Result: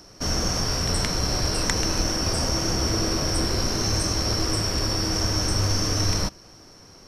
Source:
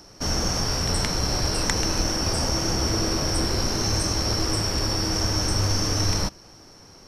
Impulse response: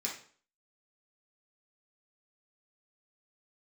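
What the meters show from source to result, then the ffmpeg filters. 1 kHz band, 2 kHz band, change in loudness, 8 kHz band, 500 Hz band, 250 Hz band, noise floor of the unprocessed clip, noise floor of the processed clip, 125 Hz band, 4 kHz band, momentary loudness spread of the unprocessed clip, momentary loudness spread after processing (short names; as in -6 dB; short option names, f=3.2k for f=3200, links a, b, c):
-0.5 dB, 0.0 dB, 0.0 dB, 0.0 dB, 0.0 dB, 0.0 dB, -49 dBFS, -49 dBFS, 0.0 dB, 0.0 dB, 1 LU, 1 LU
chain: -af "bandreject=f=850:w=15"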